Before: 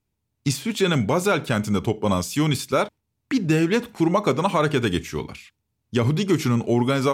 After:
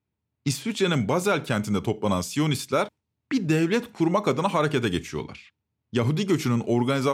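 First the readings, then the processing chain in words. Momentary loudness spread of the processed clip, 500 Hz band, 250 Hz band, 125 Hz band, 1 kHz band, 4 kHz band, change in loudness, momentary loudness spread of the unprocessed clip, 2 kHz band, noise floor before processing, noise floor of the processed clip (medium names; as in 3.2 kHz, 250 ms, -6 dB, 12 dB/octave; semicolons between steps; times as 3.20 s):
7 LU, -2.5 dB, -2.5 dB, -3.0 dB, -2.5 dB, -2.5 dB, -2.5 dB, 7 LU, -2.5 dB, -77 dBFS, -82 dBFS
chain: high-pass 76 Hz; level-controlled noise filter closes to 3 kHz, open at -20 dBFS; trim -2.5 dB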